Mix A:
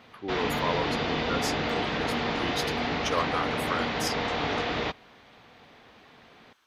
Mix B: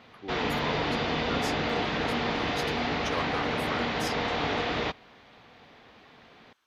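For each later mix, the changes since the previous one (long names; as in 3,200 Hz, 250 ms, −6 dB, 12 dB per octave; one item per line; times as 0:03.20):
speech −6.0 dB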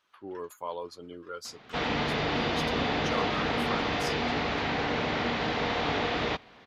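speech: add high-shelf EQ 10,000 Hz −6.5 dB
background: entry +1.45 s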